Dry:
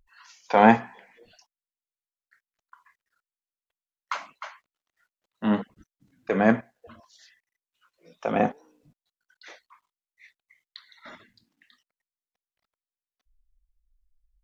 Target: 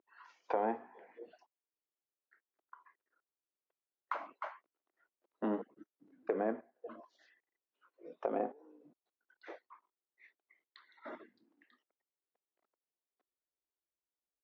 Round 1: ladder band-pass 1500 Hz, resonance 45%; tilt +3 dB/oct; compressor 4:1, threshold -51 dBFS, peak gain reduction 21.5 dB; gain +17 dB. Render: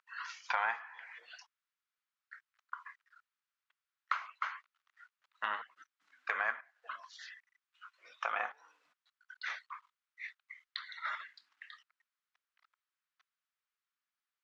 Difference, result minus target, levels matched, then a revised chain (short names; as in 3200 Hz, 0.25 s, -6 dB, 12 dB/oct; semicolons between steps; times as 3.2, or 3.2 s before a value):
2000 Hz band +15.5 dB
ladder band-pass 400 Hz, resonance 45%; tilt +3 dB/oct; compressor 4:1, threshold -51 dBFS, peak gain reduction 19.5 dB; gain +17 dB